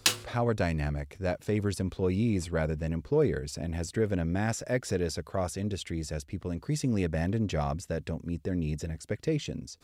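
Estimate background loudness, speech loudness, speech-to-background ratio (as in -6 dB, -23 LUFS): -30.5 LUFS, -31.5 LUFS, -1.0 dB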